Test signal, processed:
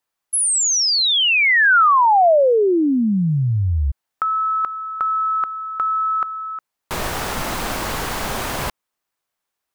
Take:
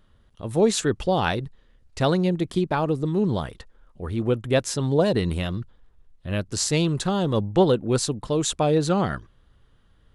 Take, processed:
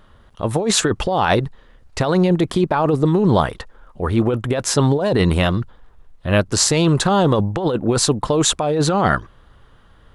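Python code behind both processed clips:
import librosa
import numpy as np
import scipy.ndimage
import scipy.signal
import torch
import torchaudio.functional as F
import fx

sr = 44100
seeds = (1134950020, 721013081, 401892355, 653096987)

y = fx.peak_eq(x, sr, hz=970.0, db=7.5, octaves=2.1)
y = fx.over_compress(y, sr, threshold_db=-21.0, ratio=-1.0)
y = fx.quant_float(y, sr, bits=8)
y = y * librosa.db_to_amplitude(5.5)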